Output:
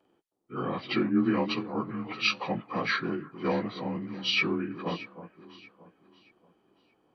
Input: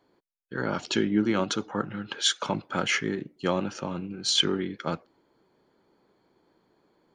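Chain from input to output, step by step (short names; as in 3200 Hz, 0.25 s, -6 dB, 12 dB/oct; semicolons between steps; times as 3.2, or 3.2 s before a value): inharmonic rescaling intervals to 88%; echo with dull and thin repeats by turns 0.314 s, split 1100 Hz, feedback 57%, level -12 dB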